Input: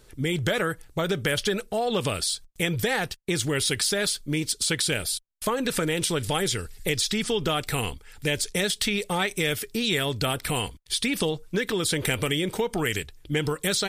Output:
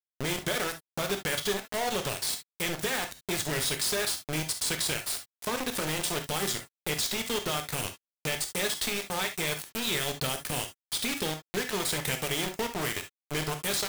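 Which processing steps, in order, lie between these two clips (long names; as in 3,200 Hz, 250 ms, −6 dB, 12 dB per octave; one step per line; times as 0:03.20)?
high-shelf EQ 3,200 Hz +2.5 dB
bit reduction 4 bits
reverb whose tail is shaped and stops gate 90 ms flat, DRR 5.5 dB
level −7.5 dB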